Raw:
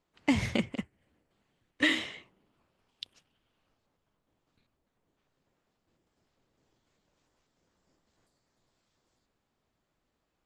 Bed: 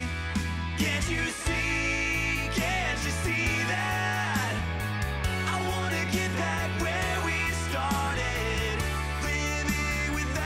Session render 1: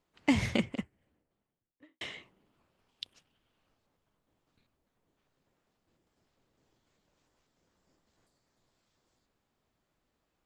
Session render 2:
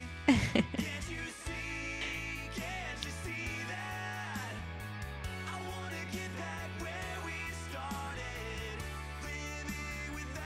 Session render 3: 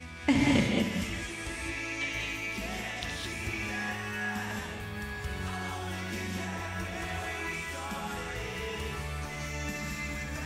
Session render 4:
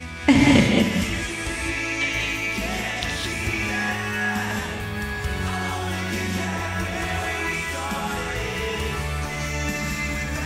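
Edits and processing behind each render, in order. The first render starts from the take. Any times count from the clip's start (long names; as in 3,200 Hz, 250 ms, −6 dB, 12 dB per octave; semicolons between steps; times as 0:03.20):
0:00.57–0:02.01: fade out and dull
mix in bed −12 dB
flutter between parallel walls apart 11.6 metres, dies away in 0.43 s; reverb whose tail is shaped and stops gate 240 ms rising, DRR −1.5 dB
level +9.5 dB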